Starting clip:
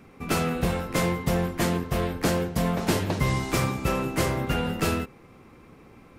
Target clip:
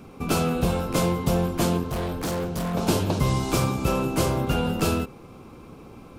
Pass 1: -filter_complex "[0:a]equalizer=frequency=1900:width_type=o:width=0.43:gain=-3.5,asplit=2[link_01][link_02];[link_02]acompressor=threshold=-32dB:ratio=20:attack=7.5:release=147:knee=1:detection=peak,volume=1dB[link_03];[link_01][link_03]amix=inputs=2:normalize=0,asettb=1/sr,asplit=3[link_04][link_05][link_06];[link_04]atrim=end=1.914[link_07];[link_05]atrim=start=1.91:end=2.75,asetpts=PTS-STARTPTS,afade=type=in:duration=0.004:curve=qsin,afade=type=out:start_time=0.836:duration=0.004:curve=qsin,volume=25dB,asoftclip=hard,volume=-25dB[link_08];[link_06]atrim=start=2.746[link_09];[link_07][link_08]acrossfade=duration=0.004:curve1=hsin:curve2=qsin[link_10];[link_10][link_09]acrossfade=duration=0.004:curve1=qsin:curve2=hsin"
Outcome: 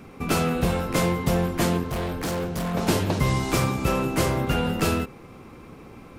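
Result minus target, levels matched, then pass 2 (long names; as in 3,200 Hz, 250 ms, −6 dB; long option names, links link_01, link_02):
2,000 Hz band +3.5 dB
-filter_complex "[0:a]equalizer=frequency=1900:width_type=o:width=0.43:gain=-13,asplit=2[link_01][link_02];[link_02]acompressor=threshold=-32dB:ratio=20:attack=7.5:release=147:knee=1:detection=peak,volume=1dB[link_03];[link_01][link_03]amix=inputs=2:normalize=0,asettb=1/sr,asplit=3[link_04][link_05][link_06];[link_04]atrim=end=1.914[link_07];[link_05]atrim=start=1.91:end=2.75,asetpts=PTS-STARTPTS,afade=type=in:duration=0.004:curve=qsin,afade=type=out:start_time=0.836:duration=0.004:curve=qsin,volume=25dB,asoftclip=hard,volume=-25dB[link_08];[link_06]atrim=start=2.746[link_09];[link_07][link_08]acrossfade=duration=0.004:curve1=hsin:curve2=qsin[link_10];[link_10][link_09]acrossfade=duration=0.004:curve1=qsin:curve2=hsin"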